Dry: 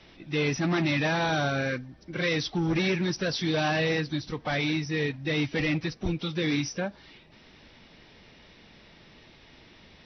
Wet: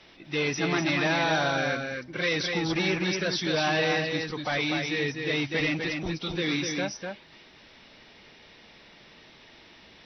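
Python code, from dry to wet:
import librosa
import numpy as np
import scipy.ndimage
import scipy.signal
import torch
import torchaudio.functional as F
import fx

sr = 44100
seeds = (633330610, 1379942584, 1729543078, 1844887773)

p1 = fx.low_shelf(x, sr, hz=240.0, db=-9.5)
p2 = p1 + fx.echo_single(p1, sr, ms=248, db=-4.5, dry=0)
y = F.gain(torch.from_numpy(p2), 1.5).numpy()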